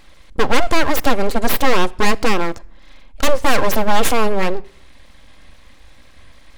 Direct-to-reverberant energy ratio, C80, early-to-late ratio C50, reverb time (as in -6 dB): 11.0 dB, 27.5 dB, 24.5 dB, no single decay rate